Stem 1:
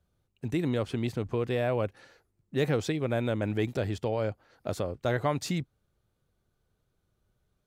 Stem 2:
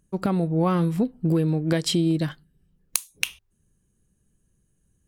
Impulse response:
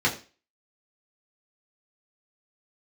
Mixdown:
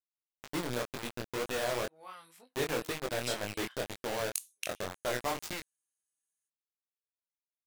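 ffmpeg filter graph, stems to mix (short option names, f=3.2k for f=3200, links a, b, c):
-filter_complex "[0:a]equalizer=f=75:w=0.45:g=-13,acrusher=bits=4:mix=0:aa=0.000001,volume=-1dB[a];[1:a]highpass=1.2k,equalizer=f=9.8k:w=0.42:g=6.5,adelay=1400,volume=-13dB[b];[a][b]amix=inputs=2:normalize=0,flanger=delay=20:depth=5.1:speed=2"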